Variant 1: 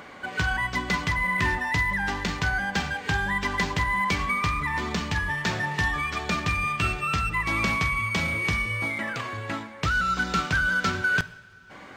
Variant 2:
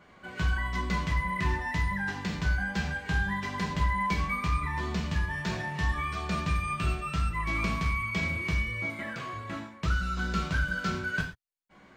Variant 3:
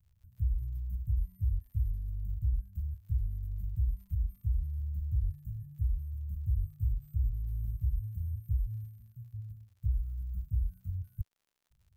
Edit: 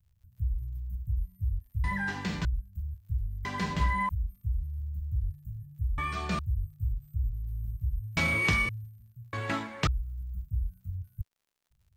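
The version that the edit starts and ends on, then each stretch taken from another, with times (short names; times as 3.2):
3
1.84–2.45 from 2
3.45–4.09 from 2
5.98–6.39 from 2
8.17–8.69 from 1
9.33–9.87 from 1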